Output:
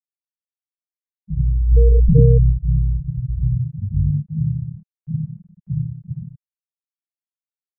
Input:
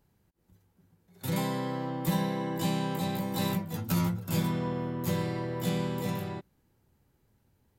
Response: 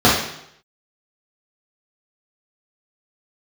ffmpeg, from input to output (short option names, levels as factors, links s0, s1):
-filter_complex "[0:a]asplit=2[s0][s1];[s1]adelay=524.8,volume=0.0708,highshelf=f=4000:g=-11.8[s2];[s0][s2]amix=inputs=2:normalize=0,asplit=3[s3][s4][s5];[s3]afade=t=out:st=1.67:d=0.02[s6];[s4]acontrast=64,afade=t=in:st=1.67:d=0.02,afade=t=out:st=2.49:d=0.02[s7];[s5]afade=t=in:st=2.49:d=0.02[s8];[s6][s7][s8]amix=inputs=3:normalize=0[s9];[1:a]atrim=start_sample=2205[s10];[s9][s10]afir=irnorm=-1:irlink=0,afftfilt=real='re*gte(hypot(re,im),5.62)':imag='im*gte(hypot(re,im),5.62)':win_size=1024:overlap=0.75,highpass=f=200:t=q:w=0.5412,highpass=f=200:t=q:w=1.307,lowpass=f=3200:t=q:w=0.5176,lowpass=f=3200:t=q:w=0.7071,lowpass=f=3200:t=q:w=1.932,afreqshift=-320,volume=0.251"